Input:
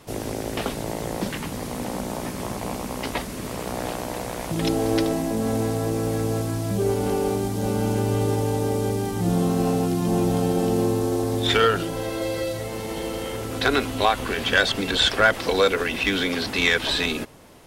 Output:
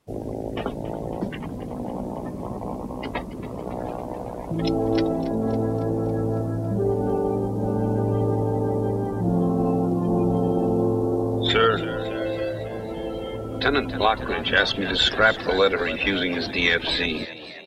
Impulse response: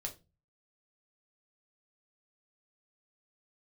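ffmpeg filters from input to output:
-filter_complex "[0:a]afftdn=noise_reduction=20:noise_floor=-30,asplit=2[link_01][link_02];[link_02]asplit=6[link_03][link_04][link_05][link_06][link_07][link_08];[link_03]adelay=277,afreqshift=67,volume=-15dB[link_09];[link_04]adelay=554,afreqshift=134,volume=-19.3dB[link_10];[link_05]adelay=831,afreqshift=201,volume=-23.6dB[link_11];[link_06]adelay=1108,afreqshift=268,volume=-27.9dB[link_12];[link_07]adelay=1385,afreqshift=335,volume=-32.2dB[link_13];[link_08]adelay=1662,afreqshift=402,volume=-36.5dB[link_14];[link_09][link_10][link_11][link_12][link_13][link_14]amix=inputs=6:normalize=0[link_15];[link_01][link_15]amix=inputs=2:normalize=0"

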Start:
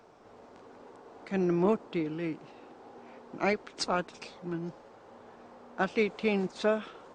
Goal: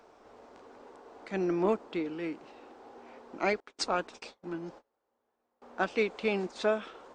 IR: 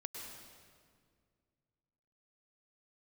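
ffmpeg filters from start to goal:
-filter_complex "[0:a]asettb=1/sr,asplit=3[link_01][link_02][link_03];[link_01]atrim=end=3.604[link_04];[link_02]atrim=start=3.6:end=5.62,asetpts=PTS-STARTPTS,afade=type=in:duration=0.004:curve=qsin,afade=type=out:start_time=2.016:duration=0.004:curve=qsin,agate=range=-28dB:threshold=-46dB:ratio=16:detection=peak[link_05];[link_03]atrim=start=5.616[link_06];[link_04][link_05]acrossfade=duration=0.004:curve1=hsin:curve2=qsin[link_07];[link_07][link_06]acrossfade=duration=0.004:curve1=qsin:curve2=hsin,equalizer=frequency=140:width_type=o:width=0.82:gain=-12.5"

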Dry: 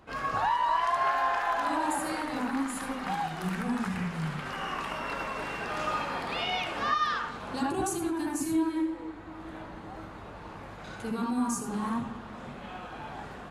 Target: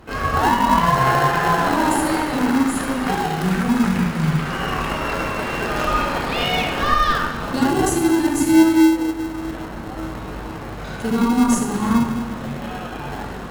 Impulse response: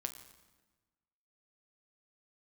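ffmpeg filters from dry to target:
-filter_complex "[0:a]asettb=1/sr,asplit=3[link_01][link_02][link_03];[link_01]atrim=end=10.014[link_04];[link_02]atrim=start=10.01:end=10.45,asetpts=PTS-STARTPTS,afade=type=in:duration=0.004:curve=qsin,afade=type=out:start_time=0.436:duration=0.004:curve=qsin,asplit=2[link_05][link_06];[link_06]adelay=16,volume=-5dB[link_07];[link_05][link_07]amix=inputs=2:normalize=0,atrim=end_sample=19404[link_08];[link_03]atrim=start=10.446[link_09];[link_04][link_08]acrossfade=duration=0.004:curve1=hsin:curve2=qsin[link_10];[link_10][link_09]acrossfade=duration=0.004:curve1=qsin:curve2=hsin[link_11];[1:a]atrim=start_sample=2205,asetrate=31752,aresample=44100[link_12];[link_11][link_12]afir=irnorm=-1:irlink=0,asplit=2[link_13][link_14];[link_14]acrusher=samples=37:mix=1:aa=0.000001,volume=-5dB[link_15];[link_13][link_15]amix=inputs=2:normalize=0,volume=9dB"

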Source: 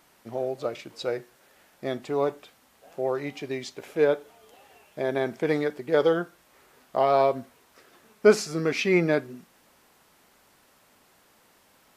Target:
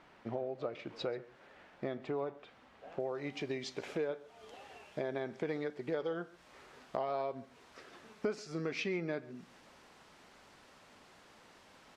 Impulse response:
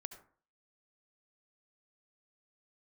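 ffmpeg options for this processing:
-af "asetnsamples=nb_out_samples=441:pad=0,asendcmd='3 lowpass f 5800',lowpass=2800,acompressor=threshold=-37dB:ratio=5,aecho=1:1:135:0.0944,volume=1.5dB"

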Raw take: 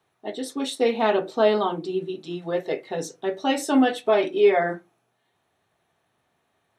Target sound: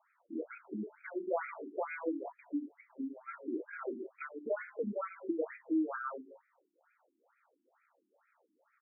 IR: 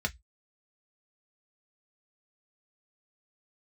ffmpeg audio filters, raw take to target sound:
-af "bandreject=frequency=70.89:width_type=h:width=4,bandreject=frequency=141.78:width_type=h:width=4,bandreject=frequency=212.67:width_type=h:width=4,bandreject=frequency=283.56:width_type=h:width=4,bandreject=frequency=354.45:width_type=h:width=4,bandreject=frequency=425.34:width_type=h:width=4,bandreject=frequency=496.23:width_type=h:width=4,bandreject=frequency=567.12:width_type=h:width=4,bandreject=frequency=638.01:width_type=h:width=4,bandreject=frequency=708.9:width_type=h:width=4,bandreject=frequency=779.79:width_type=h:width=4,bandreject=frequency=850.68:width_type=h:width=4,bandreject=frequency=921.57:width_type=h:width=4,bandreject=frequency=992.46:width_type=h:width=4,bandreject=frequency=1063.35:width_type=h:width=4,bandreject=frequency=1134.24:width_type=h:width=4,bandreject=frequency=1205.13:width_type=h:width=4,bandreject=frequency=1276.02:width_type=h:width=4,bandreject=frequency=1346.91:width_type=h:width=4,asetrate=33957,aresample=44100,acompressor=threshold=-32dB:ratio=5,bass=frequency=250:gain=-11,treble=frequency=4000:gain=14,afftfilt=real='re*between(b*sr/1024,260*pow(1800/260,0.5+0.5*sin(2*PI*2.2*pts/sr))/1.41,260*pow(1800/260,0.5+0.5*sin(2*PI*2.2*pts/sr))*1.41)':imag='im*between(b*sr/1024,260*pow(1800/260,0.5+0.5*sin(2*PI*2.2*pts/sr))/1.41,260*pow(1800/260,0.5+0.5*sin(2*PI*2.2*pts/sr))*1.41)':win_size=1024:overlap=0.75,volume=4.5dB"

